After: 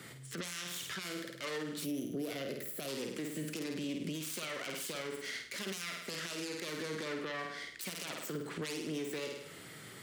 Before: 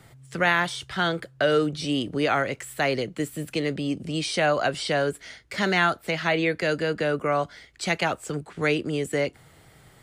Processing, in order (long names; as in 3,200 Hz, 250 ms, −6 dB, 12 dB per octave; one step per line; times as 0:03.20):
phase distortion by the signal itself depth 0.42 ms
high-pass filter 210 Hz 12 dB per octave
parametric band 760 Hz −12 dB 0.8 octaves
flutter between parallel walls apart 8.8 metres, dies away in 0.46 s
gain on a spectral selection 0:01.84–0:02.88, 760–10,000 Hz −11 dB
downward compressor 10 to 1, threshold −39 dBFS, peak gain reduction 22 dB
brickwall limiter −36 dBFS, peak gain reduction 14.5 dB
level +6 dB